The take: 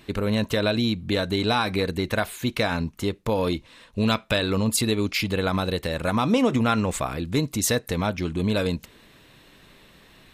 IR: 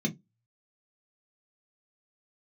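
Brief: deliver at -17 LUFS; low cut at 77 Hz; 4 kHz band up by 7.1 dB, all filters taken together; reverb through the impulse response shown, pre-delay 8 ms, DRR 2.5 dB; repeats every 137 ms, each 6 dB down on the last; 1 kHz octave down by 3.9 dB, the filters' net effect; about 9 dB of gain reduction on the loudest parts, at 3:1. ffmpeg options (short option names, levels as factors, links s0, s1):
-filter_complex "[0:a]highpass=77,equalizer=f=1000:t=o:g=-6,equalizer=f=4000:t=o:g=8,acompressor=threshold=0.0355:ratio=3,aecho=1:1:137|274|411|548|685|822:0.501|0.251|0.125|0.0626|0.0313|0.0157,asplit=2[s0][s1];[1:a]atrim=start_sample=2205,adelay=8[s2];[s1][s2]afir=irnorm=-1:irlink=0,volume=0.422[s3];[s0][s3]amix=inputs=2:normalize=0,volume=1.33"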